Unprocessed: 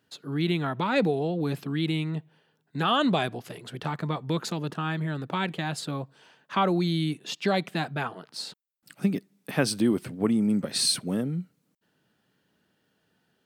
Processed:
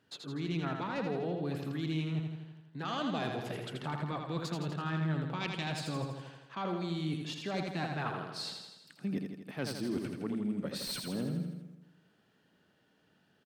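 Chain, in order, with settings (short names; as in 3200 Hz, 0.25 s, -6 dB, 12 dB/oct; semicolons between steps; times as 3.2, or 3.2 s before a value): self-modulated delay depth 0.086 ms; spectral gain 5.41–5.69, 2100–11000 Hz +8 dB; reverse; compressor, threshold -34 dBFS, peak gain reduction 15 dB; reverse; high shelf 8300 Hz -11.5 dB; on a send: feedback echo 82 ms, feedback 60%, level -5 dB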